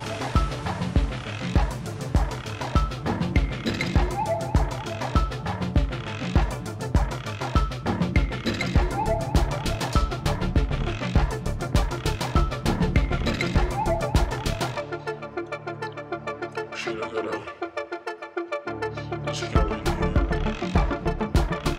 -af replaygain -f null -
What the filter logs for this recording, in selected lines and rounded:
track_gain = +7.6 dB
track_peak = 0.221